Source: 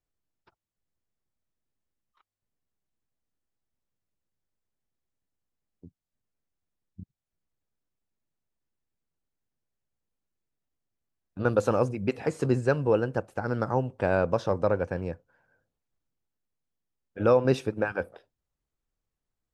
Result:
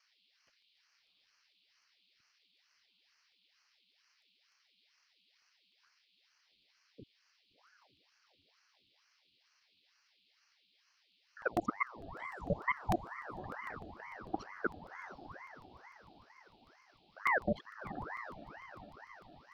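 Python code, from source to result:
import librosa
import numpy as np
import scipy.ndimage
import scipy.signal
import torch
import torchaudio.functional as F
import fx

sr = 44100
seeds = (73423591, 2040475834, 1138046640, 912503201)

p1 = fx.envelope_sharpen(x, sr, power=3.0)
p2 = fx.level_steps(p1, sr, step_db=22)
p3 = fx.dmg_noise_band(p2, sr, seeds[0], low_hz=2600.0, high_hz=4500.0, level_db=-67.0)
p4 = p3 + fx.echo_diffused(p3, sr, ms=703, feedback_pct=43, wet_db=-10.0, dry=0)
p5 = fx.buffer_crackle(p4, sr, first_s=0.32, period_s=0.15, block=64, kind='repeat')
p6 = fx.ring_lfo(p5, sr, carrier_hz=890.0, swing_pct=80, hz=2.2)
y = p6 * 10.0 ** (-4.5 / 20.0)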